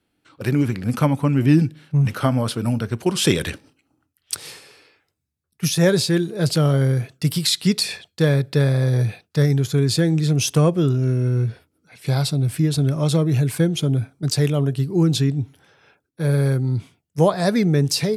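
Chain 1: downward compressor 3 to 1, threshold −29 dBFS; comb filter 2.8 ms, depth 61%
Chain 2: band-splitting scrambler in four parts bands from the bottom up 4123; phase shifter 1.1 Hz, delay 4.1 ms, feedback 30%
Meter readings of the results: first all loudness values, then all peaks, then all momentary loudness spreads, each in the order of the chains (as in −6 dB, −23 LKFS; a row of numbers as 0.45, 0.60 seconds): −31.0, −17.0 LKFS; −10.0, −2.5 dBFS; 8, 8 LU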